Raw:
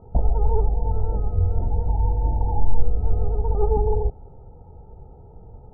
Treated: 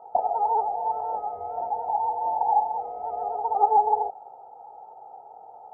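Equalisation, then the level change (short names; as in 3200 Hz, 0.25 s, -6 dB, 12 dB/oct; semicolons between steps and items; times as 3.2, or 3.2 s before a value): resonant high-pass 760 Hz, resonance Q 7.2; 0.0 dB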